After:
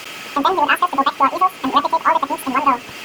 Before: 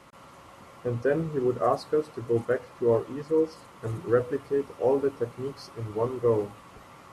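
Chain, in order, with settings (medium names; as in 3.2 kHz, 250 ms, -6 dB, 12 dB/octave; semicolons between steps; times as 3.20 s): in parallel at +2.5 dB: compression, threshold -32 dBFS, peak gain reduction 14 dB; on the sum: speed mistake 33 rpm record played at 78 rpm; tape noise reduction on one side only encoder only; trim +7 dB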